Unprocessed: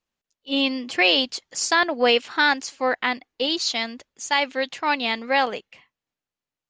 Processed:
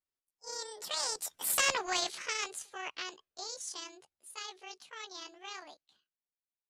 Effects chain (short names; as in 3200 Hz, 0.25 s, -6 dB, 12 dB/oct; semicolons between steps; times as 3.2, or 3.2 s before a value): delay-line pitch shifter +8 st; Doppler pass-by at 1.67, 27 m/s, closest 2.9 m; spectral compressor 2:1; gain -5.5 dB